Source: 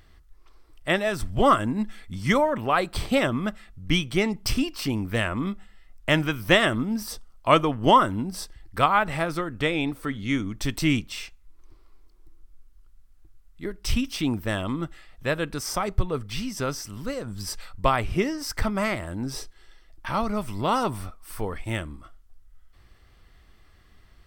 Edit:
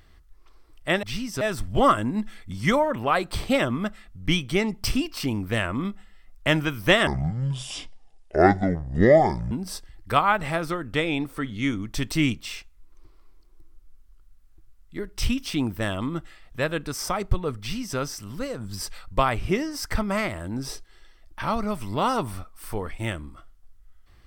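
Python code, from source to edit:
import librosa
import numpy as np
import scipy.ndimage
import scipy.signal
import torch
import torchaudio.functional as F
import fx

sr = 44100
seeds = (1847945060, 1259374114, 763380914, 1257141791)

y = fx.edit(x, sr, fx.speed_span(start_s=6.69, length_s=1.49, speed=0.61),
    fx.duplicate(start_s=16.26, length_s=0.38, to_s=1.03), tone=tone)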